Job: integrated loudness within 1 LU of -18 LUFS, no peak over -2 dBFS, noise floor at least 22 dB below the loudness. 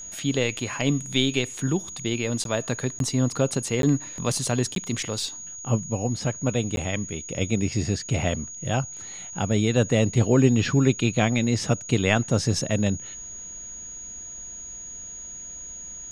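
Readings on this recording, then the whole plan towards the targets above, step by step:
dropouts 5; longest dropout 12 ms; steady tone 6700 Hz; tone level -36 dBFS; loudness -24.5 LUFS; peak -5.0 dBFS; loudness target -18.0 LUFS
-> interpolate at 2.44/2.99/3.82/4.75/6.76, 12 ms; notch 6700 Hz, Q 30; gain +6.5 dB; limiter -2 dBFS

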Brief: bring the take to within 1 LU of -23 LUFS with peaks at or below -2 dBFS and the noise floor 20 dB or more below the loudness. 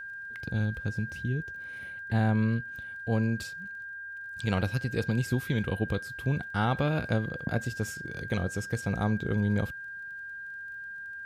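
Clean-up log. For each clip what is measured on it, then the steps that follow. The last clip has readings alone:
ticks 25/s; steady tone 1600 Hz; tone level -38 dBFS; loudness -31.5 LUFS; peak -13.0 dBFS; loudness target -23.0 LUFS
-> de-click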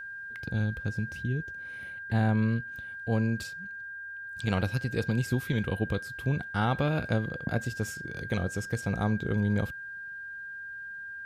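ticks 0.089/s; steady tone 1600 Hz; tone level -38 dBFS
-> notch 1600 Hz, Q 30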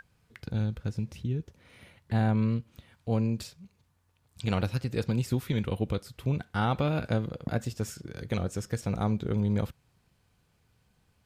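steady tone none; loudness -31.0 LUFS; peak -13.5 dBFS; loudness target -23.0 LUFS
-> gain +8 dB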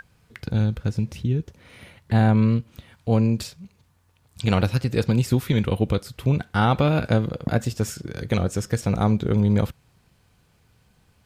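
loudness -23.0 LUFS; peak -5.5 dBFS; noise floor -62 dBFS

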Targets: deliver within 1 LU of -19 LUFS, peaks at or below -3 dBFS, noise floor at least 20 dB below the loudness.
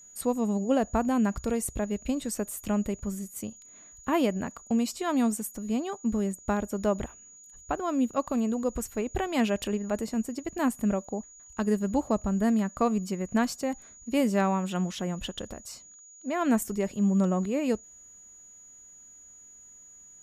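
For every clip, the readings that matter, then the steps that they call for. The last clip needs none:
steady tone 6800 Hz; tone level -49 dBFS; loudness -29.0 LUFS; peak -12.0 dBFS; loudness target -19.0 LUFS
-> notch 6800 Hz, Q 30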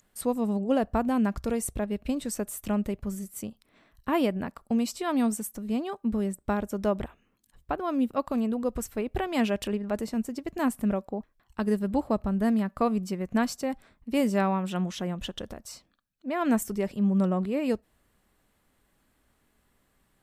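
steady tone none; loudness -29.0 LUFS; peak -12.0 dBFS; loudness target -19.0 LUFS
-> gain +10 dB; limiter -3 dBFS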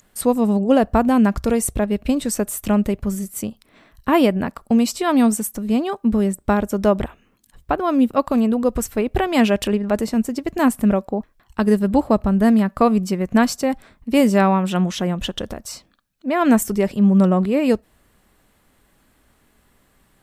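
loudness -19.0 LUFS; peak -3.0 dBFS; noise floor -60 dBFS

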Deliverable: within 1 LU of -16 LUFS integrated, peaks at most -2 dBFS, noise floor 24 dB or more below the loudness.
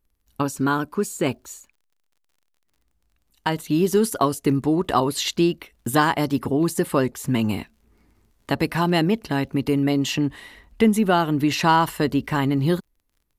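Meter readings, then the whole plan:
ticks 33/s; loudness -22.0 LUFS; peak -6.0 dBFS; loudness target -16.0 LUFS
-> de-click; gain +6 dB; limiter -2 dBFS

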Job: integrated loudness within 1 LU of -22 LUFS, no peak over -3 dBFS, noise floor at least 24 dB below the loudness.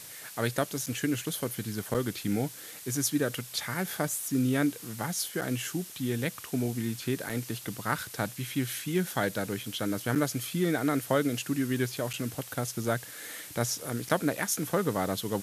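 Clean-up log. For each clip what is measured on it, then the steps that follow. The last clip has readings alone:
dropouts 7; longest dropout 6.8 ms; noise floor -46 dBFS; noise floor target -55 dBFS; loudness -31.0 LUFS; peak -9.5 dBFS; loudness target -22.0 LUFS
-> interpolate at 0.86/1.94/5.41/7.29/10.15/12.13/14.09, 6.8 ms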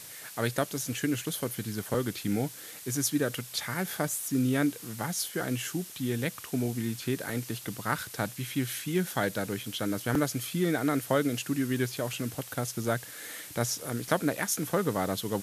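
dropouts 0; noise floor -46 dBFS; noise floor target -55 dBFS
-> noise print and reduce 9 dB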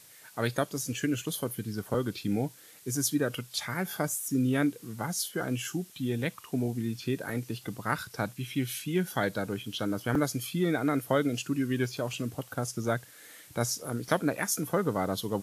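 noise floor -54 dBFS; noise floor target -56 dBFS
-> noise print and reduce 6 dB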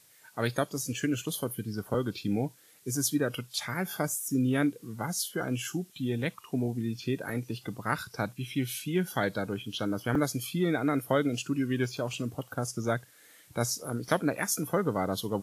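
noise floor -59 dBFS; loudness -31.5 LUFS; peak -10.0 dBFS; loudness target -22.0 LUFS
-> gain +9.5 dB; limiter -3 dBFS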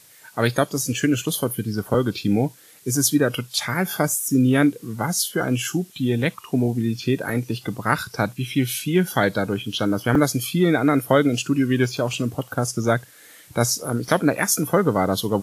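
loudness -22.0 LUFS; peak -3.0 dBFS; noise floor -50 dBFS

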